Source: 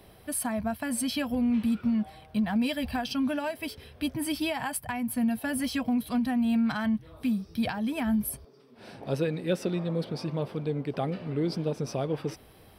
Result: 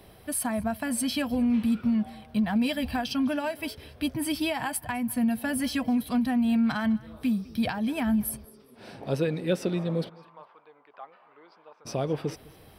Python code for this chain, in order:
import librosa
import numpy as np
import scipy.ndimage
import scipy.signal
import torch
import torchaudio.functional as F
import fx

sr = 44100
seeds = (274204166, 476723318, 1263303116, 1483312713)

p1 = fx.ladder_bandpass(x, sr, hz=1200.0, resonance_pct=50, at=(10.08, 11.85), fade=0.02)
p2 = p1 + fx.echo_feedback(p1, sr, ms=205, feedback_pct=29, wet_db=-23.0, dry=0)
y = F.gain(torch.from_numpy(p2), 1.5).numpy()